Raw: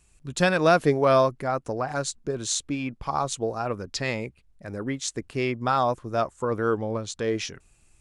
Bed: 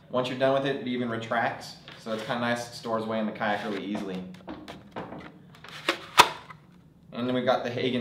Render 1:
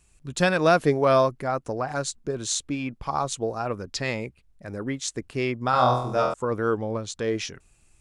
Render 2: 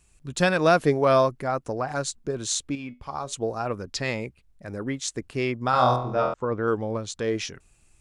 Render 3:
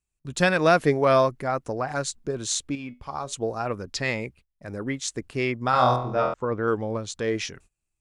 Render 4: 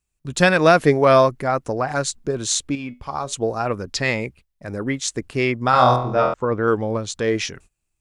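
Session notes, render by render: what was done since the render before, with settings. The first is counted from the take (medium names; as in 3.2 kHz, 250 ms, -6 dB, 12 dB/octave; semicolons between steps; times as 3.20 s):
5.71–6.34 s: flutter echo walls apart 4.1 m, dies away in 0.62 s
2.75–3.33 s: feedback comb 82 Hz, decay 0.24 s, harmonics odd; 5.96–6.68 s: distance through air 200 m
gate -50 dBFS, range -23 dB; dynamic bell 2 kHz, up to +4 dB, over -41 dBFS, Q 2.4
trim +5.5 dB; peak limiter -2 dBFS, peak gain reduction 1.5 dB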